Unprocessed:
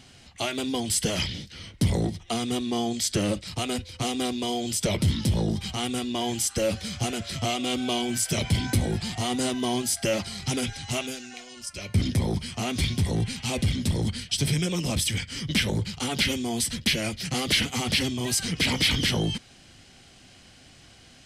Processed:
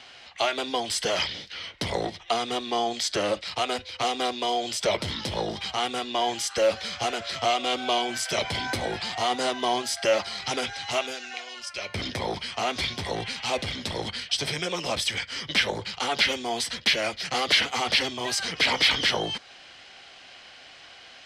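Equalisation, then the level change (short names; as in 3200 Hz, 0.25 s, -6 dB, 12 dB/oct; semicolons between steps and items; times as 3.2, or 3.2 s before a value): three-band isolator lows -22 dB, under 490 Hz, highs -20 dB, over 4900 Hz; dynamic EQ 2700 Hz, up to -6 dB, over -43 dBFS, Q 1.1; +8.5 dB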